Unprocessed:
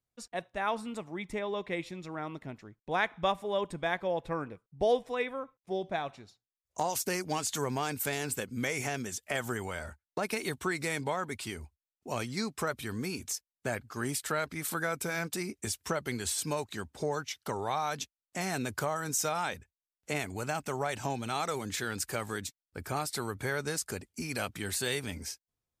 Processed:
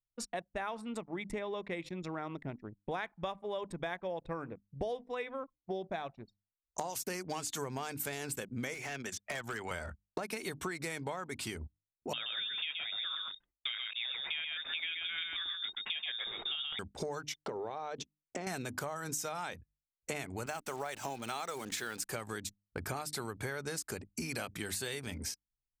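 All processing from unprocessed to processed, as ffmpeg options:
-filter_complex "[0:a]asettb=1/sr,asplit=3[a][b][c];[a]atrim=end=8.744[d];[b]atrim=start=8.74:end=9.71,asetpts=PTS-STARTPTS,afade=t=in:d=0.004:c=qsin,afade=t=out:st=0.966:d=0.004:c=qsin,acrossover=split=340|1200|4700[e][f][g][h];[e]acompressor=threshold=-52dB:ratio=3[i];[f]acompressor=threshold=-48dB:ratio=3[j];[g]acompressor=threshold=-37dB:ratio=3[k];[h]acompressor=threshold=-56dB:ratio=3[l];[i][j][k][l]amix=inputs=4:normalize=0,volume=35.5dB,asoftclip=hard,volume=-35.5dB[m];[c]atrim=start=9.706[n];[d][m]acrossfade=d=0.004:c1=hsin:c2=qsin[o];[o][n]acrossfade=d=0.004:c1=qsin:c2=hsin,asettb=1/sr,asplit=3[p][q][r];[p]atrim=end=12.134[s];[q]atrim=start=12.13:end=16.79,asetpts=PTS-STARTPTS,afade=t=in:d=0.004:c=qsin,afade=t=out:st=4.656:d=0.004:c=qsin,aecho=1:1:127:0.631,atrim=end_sample=205506,lowpass=f=3.2k:t=q:w=0.5098,lowpass=f=3.2k:t=q:w=0.6013,lowpass=f=3.2k:t=q:w=0.9,lowpass=f=3.2k:t=q:w=2.563,afreqshift=-3800[t];[r]atrim=start=16.786[u];[s][t]acrossfade=d=0.004:c1=hsin:c2=qsin[v];[v][u]acrossfade=d=0.004:c1=qsin:c2=hsin,asettb=1/sr,asplit=3[w][x][y];[w]atrim=end=17.354[z];[x]atrim=start=17.35:end=18.47,asetpts=PTS-STARTPTS,afade=t=in:d=0.004:c=qsin,afade=t=out:st=1.116:d=0.004:c=qsin,lowpass=6.3k,acompressor=threshold=-45dB:ratio=3:attack=3.2:release=140:knee=1:detection=peak,equalizer=f=440:t=o:w=1.4:g=11[aa];[y]atrim=start=18.466[ab];[z][aa]acrossfade=d=0.004:c1=hsin:c2=qsin[ac];[ac][ab]acrossfade=d=0.004:c1=qsin:c2=hsin,asettb=1/sr,asplit=3[ad][ae][af];[ad]atrim=end=20.464[ag];[ae]atrim=start=20.46:end=22.09,asetpts=PTS-STARTPTS,afade=t=in:d=0.004:c=qsin,afade=t=out:st=1.626:d=0.004:c=qsin,highpass=f=340:p=1,acrusher=bits=9:dc=4:mix=0:aa=0.000001[ah];[af]atrim=start=22.086[ai];[ag][ah]acrossfade=d=0.004:c1=hsin:c2=qsin[aj];[aj][ai]acrossfade=d=0.004:c1=qsin:c2=hsin,bandreject=f=50:t=h:w=6,bandreject=f=100:t=h:w=6,bandreject=f=150:t=h:w=6,bandreject=f=200:t=h:w=6,bandreject=f=250:t=h:w=6,bandreject=f=300:t=h:w=6,anlmdn=0.0158,acompressor=threshold=-42dB:ratio=6,volume=6dB"

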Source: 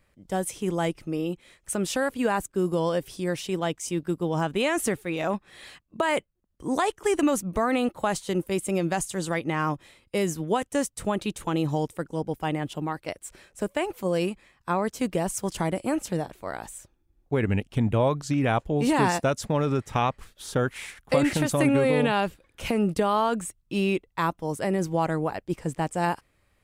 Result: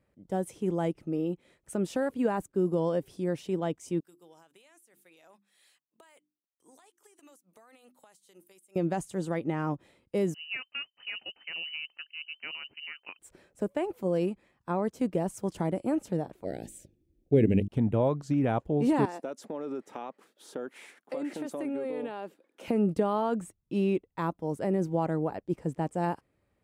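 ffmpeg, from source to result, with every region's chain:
-filter_complex "[0:a]asettb=1/sr,asplit=3[a][b][c];[a]atrim=end=4.004[d];[b]atrim=start=4:end=8.76,asetpts=PTS-STARTPTS,afade=t=in:d=0.004:c=qsin,afade=t=out:st=4.756:d=0.004:c=qsin,aderivative,bandreject=f=50:t=h:w=6,bandreject=f=100:t=h:w=6,bandreject=f=150:t=h:w=6,bandreject=f=200:t=h:w=6,bandreject=f=250:t=h:w=6,bandreject=f=300:t=h:w=6,bandreject=f=350:t=h:w=6,acompressor=threshold=-45dB:ratio=16:attack=3.2:release=140:knee=1:detection=peak[e];[c]atrim=start=8.756[f];[d][e]acrossfade=d=0.004:c1=hsin:c2=qsin[g];[g][f]acrossfade=d=0.004:c1=qsin:c2=hsin,asettb=1/sr,asplit=3[h][i][j];[h]atrim=end=10.344[k];[i]atrim=start=10.34:end=13.19,asetpts=PTS-STARTPTS,afade=t=in:d=0.004:c=qsin,afade=t=out:st=2.846:d=0.004:c=qsin,adynamicsmooth=sensitivity=1.5:basefreq=1.7k,lowpass=f=2.6k:t=q:w=0.5098,lowpass=f=2.6k:t=q:w=0.6013,lowpass=f=2.6k:t=q:w=0.9,lowpass=f=2.6k:t=q:w=2.563,afreqshift=-3100[l];[j]atrim=start=13.186[m];[k][l]acrossfade=d=0.004:c1=hsin:c2=qsin[n];[n][m]acrossfade=d=0.004:c1=qsin:c2=hsin,asettb=1/sr,asplit=3[o][p][q];[o]atrim=end=16.444[r];[p]atrim=start=16.44:end=17.68,asetpts=PTS-STARTPTS,afade=t=in:d=0.004:c=qsin,afade=t=out:st=1.236:d=0.004:c=qsin,asuperstop=centerf=1100:order=4:qfactor=0.68,bandreject=f=50:t=h:w=6,bandreject=f=100:t=h:w=6,bandreject=f=150:t=h:w=6,bandreject=f=200:t=h:w=6,bandreject=f=250:t=h:w=6,bandreject=f=300:t=h:w=6,bandreject=f=350:t=h:w=6,acontrast=65[s];[q]atrim=start=17.676[t];[r][s]acrossfade=d=0.004:c1=hsin:c2=qsin[u];[u][t]acrossfade=d=0.004:c1=qsin:c2=hsin,asettb=1/sr,asplit=3[v][w][x];[v]atrim=end=19.054[y];[w]atrim=start=19.05:end=22.68,asetpts=PTS-STARTPTS,afade=t=in:d=0.004:c=qsin,afade=t=out:st=3.626:d=0.004:c=qsin,highpass=f=250:w=0.5412,highpass=f=250:w=1.3066,acompressor=threshold=-32dB:ratio=2.5:attack=3.2:release=140:knee=1:detection=peak[z];[x]atrim=start=22.676[aa];[y][z]acrossfade=d=0.004:c1=hsin:c2=qsin[ab];[ab][aa]acrossfade=d=0.004:c1=qsin:c2=hsin,highpass=f=200:p=1,tiltshelf=f=920:g=8,bandreject=f=1.1k:w=23,volume=-6dB"

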